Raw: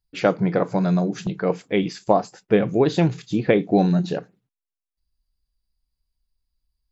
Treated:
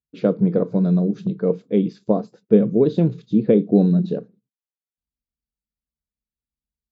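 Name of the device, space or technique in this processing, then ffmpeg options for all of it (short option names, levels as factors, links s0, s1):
car door speaker: -af "agate=range=0.447:threshold=0.00316:ratio=16:detection=peak,highpass=82,equalizer=f=100:t=q:w=4:g=-7,equalizer=f=220:t=q:w=4:g=9,equalizer=f=460:t=q:w=4:g=7,equalizer=f=810:t=q:w=4:g=-9,equalizer=f=1900:t=q:w=4:g=-5,equalizer=f=3800:t=q:w=4:g=8,lowpass=f=6700:w=0.5412,lowpass=f=6700:w=1.3066,tiltshelf=f=970:g=9,volume=0.398"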